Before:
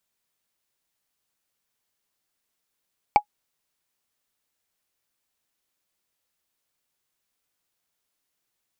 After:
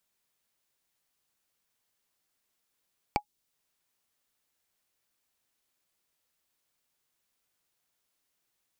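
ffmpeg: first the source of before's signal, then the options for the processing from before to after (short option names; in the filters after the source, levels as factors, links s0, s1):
-f lavfi -i "aevalsrc='0.501*pow(10,-3*t/0.08)*sin(2*PI*832*t)+0.168*pow(10,-3*t/0.024)*sin(2*PI*2293.8*t)+0.0562*pow(10,-3*t/0.011)*sin(2*PI*4496.1*t)+0.0188*pow(10,-3*t/0.006)*sin(2*PI*7432.3*t)+0.00631*pow(10,-3*t/0.004)*sin(2*PI*11098.9*t)':d=0.45:s=44100"
-filter_complex "[0:a]acrossover=split=450|3000[s0][s1][s2];[s1]acompressor=threshold=0.01:ratio=2.5[s3];[s0][s3][s2]amix=inputs=3:normalize=0"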